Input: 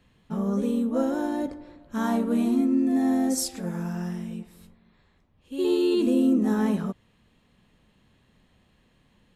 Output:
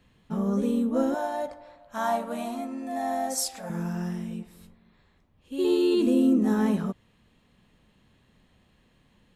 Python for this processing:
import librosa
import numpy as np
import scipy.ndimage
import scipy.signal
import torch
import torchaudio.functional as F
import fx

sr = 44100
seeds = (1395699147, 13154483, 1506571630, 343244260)

y = fx.low_shelf_res(x, sr, hz=490.0, db=-9.5, q=3.0, at=(1.14, 3.7))